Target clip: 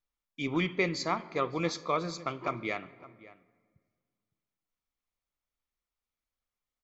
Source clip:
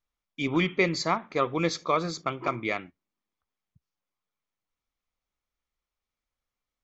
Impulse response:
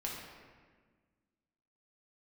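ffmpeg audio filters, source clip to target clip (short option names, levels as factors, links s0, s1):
-filter_complex "[0:a]asplit=2[s0][s1];[s1]adelay=559.8,volume=0.126,highshelf=f=4000:g=-12.6[s2];[s0][s2]amix=inputs=2:normalize=0,asplit=2[s3][s4];[1:a]atrim=start_sample=2205,asetrate=38367,aresample=44100[s5];[s4][s5]afir=irnorm=-1:irlink=0,volume=0.15[s6];[s3][s6]amix=inputs=2:normalize=0,volume=0.531"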